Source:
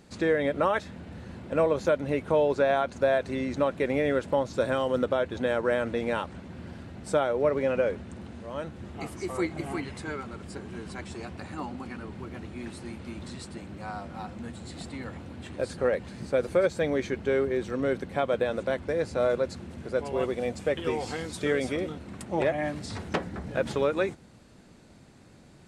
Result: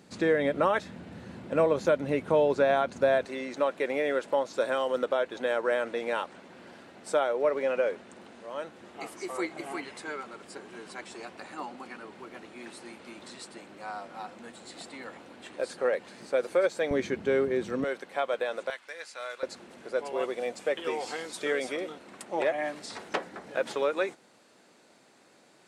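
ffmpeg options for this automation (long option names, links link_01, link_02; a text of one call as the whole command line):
ffmpeg -i in.wav -af "asetnsamples=nb_out_samples=441:pad=0,asendcmd='3.25 highpass f 400;16.91 highpass f 150;17.84 highpass f 570;18.7 highpass f 1500;19.43 highpass f 420',highpass=130" out.wav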